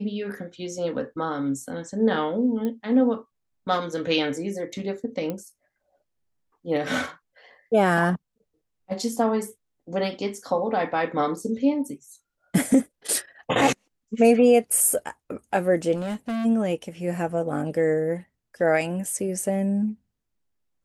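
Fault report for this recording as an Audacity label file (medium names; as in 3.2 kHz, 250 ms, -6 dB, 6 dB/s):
2.650000	2.650000	pop -18 dBFS
5.300000	5.300000	pop -17 dBFS
15.950000	16.460000	clipped -25.5 dBFS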